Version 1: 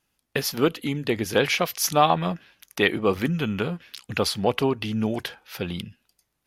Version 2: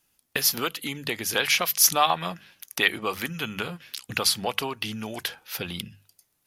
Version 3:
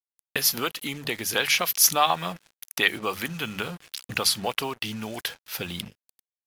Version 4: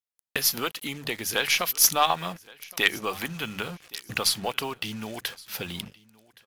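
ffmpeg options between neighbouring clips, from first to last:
ffmpeg -i in.wav -filter_complex "[0:a]highshelf=frequency=5600:gain=10.5,bandreject=frequency=50:width_type=h:width=6,bandreject=frequency=100:width_type=h:width=6,bandreject=frequency=150:width_type=h:width=6,bandreject=frequency=200:width_type=h:width=6,acrossover=split=750|2800[link_01][link_02][link_03];[link_01]acompressor=threshold=-33dB:ratio=6[link_04];[link_04][link_02][link_03]amix=inputs=3:normalize=0" out.wav
ffmpeg -i in.wav -af "acrusher=bits=6:mix=0:aa=0.5" out.wav
ffmpeg -i in.wav -af "aeval=exprs='0.708*(cos(1*acos(clip(val(0)/0.708,-1,1)))-cos(1*PI/2))+0.0794*(cos(2*acos(clip(val(0)/0.708,-1,1)))-cos(2*PI/2))+0.0794*(cos(3*acos(clip(val(0)/0.708,-1,1)))-cos(3*PI/2))+0.0141*(cos(8*acos(clip(val(0)/0.708,-1,1)))-cos(8*PI/2))':channel_layout=same,aecho=1:1:1119|2238:0.0668|0.016,volume=2dB" out.wav

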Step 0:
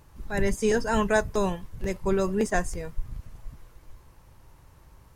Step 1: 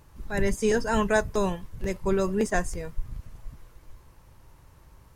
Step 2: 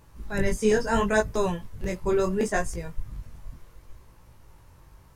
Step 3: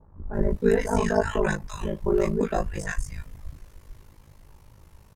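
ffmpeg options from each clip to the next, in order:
ffmpeg -i in.wav -af "equalizer=frequency=770:width=7.7:gain=-2" out.wav
ffmpeg -i in.wav -af "flanger=delay=17.5:depth=5.8:speed=0.71,volume=3.5dB" out.wav
ffmpeg -i in.wav -filter_complex "[0:a]acrossover=split=1200[link_01][link_02];[link_02]adelay=340[link_03];[link_01][link_03]amix=inputs=2:normalize=0,aeval=exprs='val(0)*sin(2*PI*26*n/s)':channel_layout=same,adynamicequalizer=threshold=0.00447:dfrequency=2300:dqfactor=0.7:tfrequency=2300:tqfactor=0.7:attack=5:release=100:ratio=0.375:range=3.5:mode=cutabove:tftype=highshelf,volume=4dB" out.wav

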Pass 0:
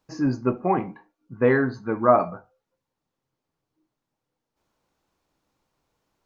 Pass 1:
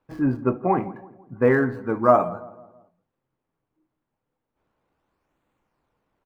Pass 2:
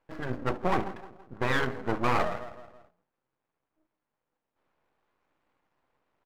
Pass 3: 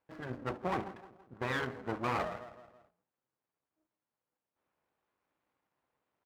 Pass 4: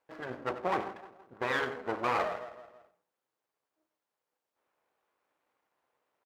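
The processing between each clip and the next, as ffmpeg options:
ffmpeg -i in.wav -filter_complex "[0:a]acrossover=split=3000[link_01][link_02];[link_02]acrusher=samples=39:mix=1:aa=0.000001:lfo=1:lforange=62.4:lforate=0.32[link_03];[link_01][link_03]amix=inputs=2:normalize=0,asplit=2[link_04][link_05];[link_05]adelay=165,lowpass=frequency=1400:poles=1,volume=-18dB,asplit=2[link_06][link_07];[link_07]adelay=165,lowpass=frequency=1400:poles=1,volume=0.5,asplit=2[link_08][link_09];[link_09]adelay=165,lowpass=frequency=1400:poles=1,volume=0.5,asplit=2[link_10][link_11];[link_11]adelay=165,lowpass=frequency=1400:poles=1,volume=0.5[link_12];[link_04][link_06][link_08][link_10][link_12]amix=inputs=5:normalize=0,volume=1dB" out.wav
ffmpeg -i in.wav -filter_complex "[0:a]afftfilt=real='re*lt(hypot(re,im),0.708)':imag='im*lt(hypot(re,im),0.708)':win_size=1024:overlap=0.75,asplit=2[link_01][link_02];[link_02]highpass=frequency=720:poles=1,volume=11dB,asoftclip=type=tanh:threshold=-11dB[link_03];[link_01][link_03]amix=inputs=2:normalize=0,lowpass=frequency=1700:poles=1,volume=-6dB,aeval=exprs='max(val(0),0)':channel_layout=same" out.wav
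ffmpeg -i in.wav -af "highpass=55,volume=-7dB" out.wav
ffmpeg -i in.wav -af "firequalizer=gain_entry='entry(130,0);entry(440,11);entry(9900,7)':delay=0.05:min_phase=1,aecho=1:1:92:0.224,volume=-6.5dB" out.wav

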